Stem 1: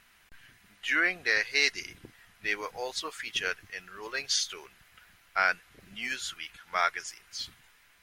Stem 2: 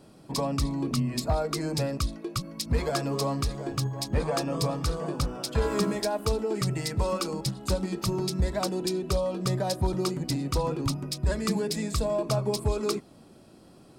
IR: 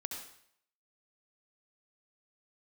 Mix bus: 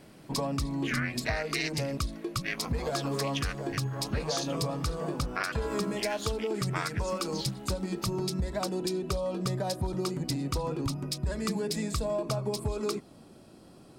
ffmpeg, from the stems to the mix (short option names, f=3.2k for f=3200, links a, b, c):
-filter_complex "[0:a]tremolo=f=270:d=1,volume=2dB[a];[1:a]volume=0dB[b];[a][b]amix=inputs=2:normalize=0,acompressor=threshold=-27dB:ratio=6"